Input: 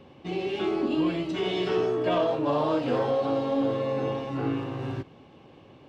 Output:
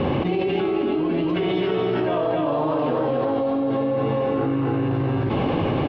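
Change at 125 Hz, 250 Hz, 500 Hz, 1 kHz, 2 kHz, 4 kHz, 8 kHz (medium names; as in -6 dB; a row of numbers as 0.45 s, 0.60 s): +9.5 dB, +6.5 dB, +5.0 dB, +5.0 dB, +5.0 dB, +2.0 dB, no reading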